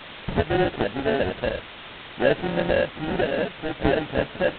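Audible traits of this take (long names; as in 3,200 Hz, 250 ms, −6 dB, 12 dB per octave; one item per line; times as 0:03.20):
aliases and images of a low sample rate 1,100 Hz, jitter 0%
tremolo saw down 0.52 Hz, depth 60%
a quantiser's noise floor 6 bits, dither triangular
G.726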